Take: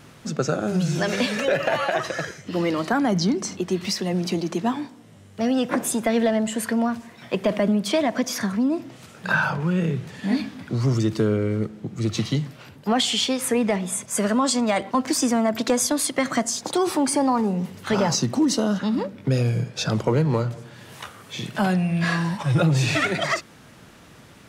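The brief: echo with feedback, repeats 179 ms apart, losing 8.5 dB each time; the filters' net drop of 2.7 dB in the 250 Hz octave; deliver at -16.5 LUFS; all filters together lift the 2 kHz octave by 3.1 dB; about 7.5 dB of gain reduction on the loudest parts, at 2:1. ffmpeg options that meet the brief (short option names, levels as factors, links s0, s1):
-af "equalizer=f=250:t=o:g=-3.5,equalizer=f=2000:t=o:g=4,acompressor=threshold=0.0316:ratio=2,aecho=1:1:179|358|537|716:0.376|0.143|0.0543|0.0206,volume=4.22"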